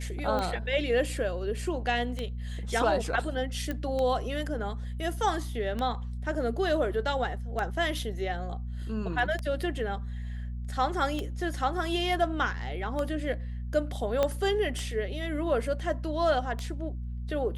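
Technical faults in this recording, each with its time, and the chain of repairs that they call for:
hum 60 Hz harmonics 4 -35 dBFS
tick 33 1/3 rpm -19 dBFS
3.71 pop -19 dBFS
14.23 pop -13 dBFS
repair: de-click; de-hum 60 Hz, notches 4

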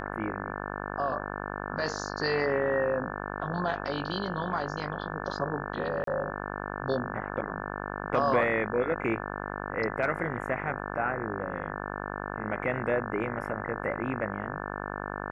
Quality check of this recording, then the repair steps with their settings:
buzz 50 Hz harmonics 35 -36 dBFS
6.04–6.07 gap 33 ms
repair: de-hum 50 Hz, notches 35; interpolate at 6.04, 33 ms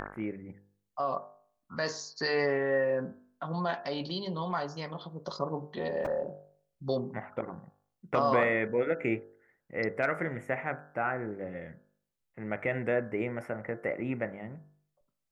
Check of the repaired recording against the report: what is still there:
none

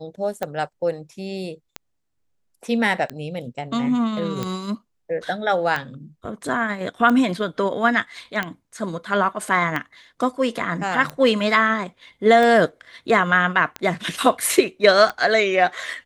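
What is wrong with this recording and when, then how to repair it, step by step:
tick 45 rpm -12 dBFS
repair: de-click

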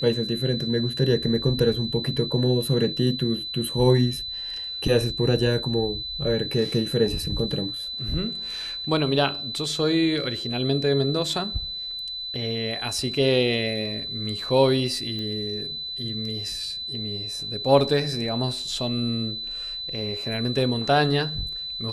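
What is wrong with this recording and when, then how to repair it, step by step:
tone 4000 Hz -30 dBFS
15.19 pop -21 dBFS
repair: de-click; notch 4000 Hz, Q 30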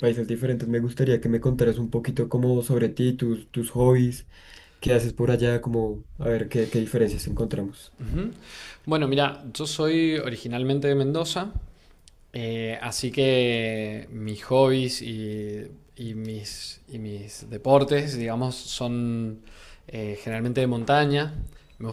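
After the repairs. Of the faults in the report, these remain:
15.19 pop

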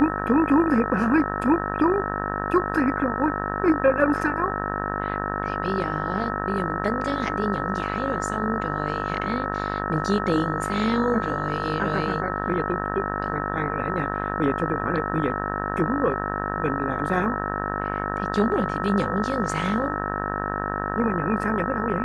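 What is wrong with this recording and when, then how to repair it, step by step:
buzz 50 Hz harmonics 37 -29 dBFS
tone 1300 Hz -31 dBFS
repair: notch 1300 Hz, Q 30; de-hum 50 Hz, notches 37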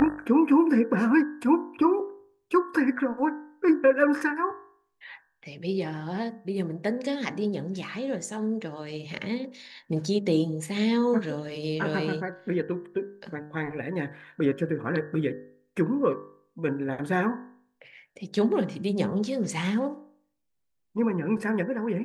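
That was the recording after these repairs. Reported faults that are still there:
none

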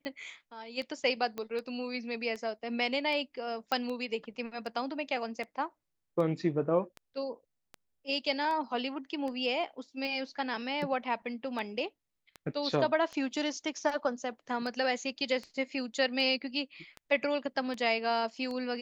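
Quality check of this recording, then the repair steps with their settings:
tick 78 rpm -27 dBFS
1.38 pop -23 dBFS
3.72 pop -17 dBFS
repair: de-click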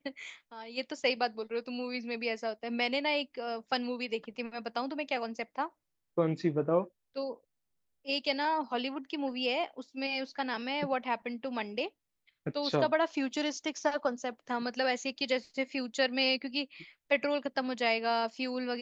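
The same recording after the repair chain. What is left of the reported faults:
1.38 pop

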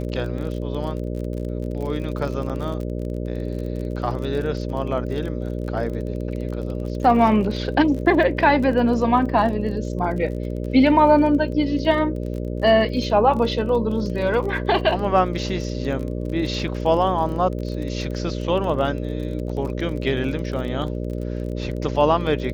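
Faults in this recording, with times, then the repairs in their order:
buzz 60 Hz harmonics 10 -27 dBFS
crackle 31/s -30 dBFS
2.49–2.5 gap 7.2 ms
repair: de-click; de-hum 60 Hz, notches 10; interpolate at 2.49, 7.2 ms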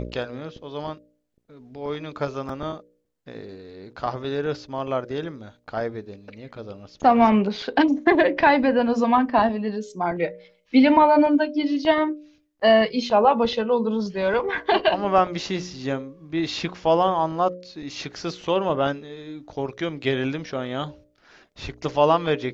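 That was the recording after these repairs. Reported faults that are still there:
none

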